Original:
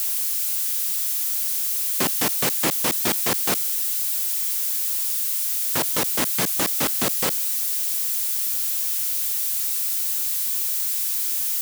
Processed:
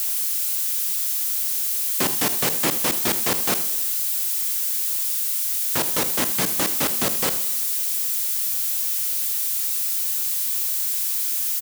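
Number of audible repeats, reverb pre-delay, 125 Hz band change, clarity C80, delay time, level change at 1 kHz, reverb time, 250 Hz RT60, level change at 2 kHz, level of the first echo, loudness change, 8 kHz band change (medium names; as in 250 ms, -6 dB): 1, 14 ms, +0.5 dB, 15.5 dB, 78 ms, +0.5 dB, 1.1 s, 1.1 s, +0.5 dB, -15.0 dB, +0.5 dB, +0.5 dB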